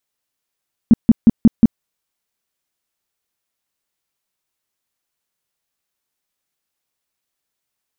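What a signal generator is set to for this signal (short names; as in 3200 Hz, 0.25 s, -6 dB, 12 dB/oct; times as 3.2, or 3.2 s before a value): tone bursts 228 Hz, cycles 6, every 0.18 s, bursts 5, -3 dBFS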